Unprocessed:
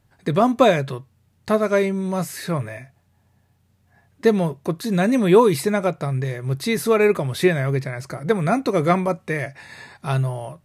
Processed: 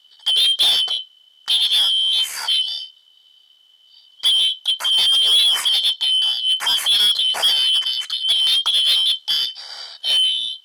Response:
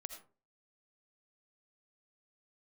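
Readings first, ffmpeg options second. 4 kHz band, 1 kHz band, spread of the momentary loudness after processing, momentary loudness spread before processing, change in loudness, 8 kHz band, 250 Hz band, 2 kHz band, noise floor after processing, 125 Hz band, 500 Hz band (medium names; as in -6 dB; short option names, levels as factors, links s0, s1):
+25.5 dB, -11.0 dB, 8 LU, 15 LU, +5.5 dB, +8.0 dB, under -30 dB, -3.0 dB, -54 dBFS, under -35 dB, under -25 dB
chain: -filter_complex "[0:a]afftfilt=real='real(if(lt(b,272),68*(eq(floor(b/68),0)*2+eq(floor(b/68),1)*3+eq(floor(b/68),2)*0+eq(floor(b/68),3)*1)+mod(b,68),b),0)':imag='imag(if(lt(b,272),68*(eq(floor(b/68),0)*2+eq(floor(b/68),1)*3+eq(floor(b/68),2)*0+eq(floor(b/68),3)*1)+mod(b,68),b),0)':win_size=2048:overlap=0.75,tremolo=f=73:d=0.4,asplit=2[s0][s1];[s1]highpass=f=720:p=1,volume=14.1,asoftclip=type=tanh:threshold=0.841[s2];[s0][s2]amix=inputs=2:normalize=0,lowpass=f=5700:p=1,volume=0.501,volume=0.501"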